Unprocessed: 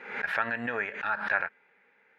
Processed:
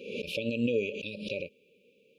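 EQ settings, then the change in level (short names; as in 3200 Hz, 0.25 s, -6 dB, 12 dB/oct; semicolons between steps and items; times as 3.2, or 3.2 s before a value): brick-wall FIR band-stop 590–2200 Hz; Butterworth band-stop 2100 Hz, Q 2.4; +8.5 dB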